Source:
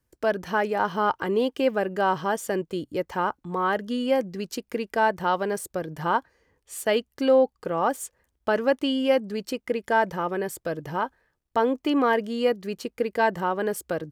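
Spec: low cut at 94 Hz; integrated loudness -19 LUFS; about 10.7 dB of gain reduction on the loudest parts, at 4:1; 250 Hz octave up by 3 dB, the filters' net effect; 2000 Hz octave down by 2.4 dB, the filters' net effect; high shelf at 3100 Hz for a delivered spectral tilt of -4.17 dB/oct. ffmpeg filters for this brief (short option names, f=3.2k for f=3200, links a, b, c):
-af "highpass=94,equalizer=f=250:t=o:g=3.5,equalizer=f=2k:t=o:g=-6,highshelf=f=3.1k:g=8,acompressor=threshold=-27dB:ratio=4,volume=12.5dB"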